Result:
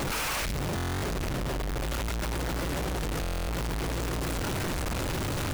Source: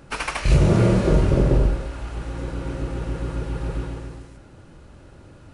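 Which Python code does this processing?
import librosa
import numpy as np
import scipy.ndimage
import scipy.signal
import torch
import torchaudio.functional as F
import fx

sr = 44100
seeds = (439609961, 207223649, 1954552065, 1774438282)

y = np.sign(x) * np.sqrt(np.mean(np.square(x)))
y = fx.buffer_glitch(y, sr, at_s=(0.75, 3.21), block=1024, repeats=11)
y = fx.record_warp(y, sr, rpm=33.33, depth_cents=160.0)
y = y * librosa.db_to_amplitude(-8.5)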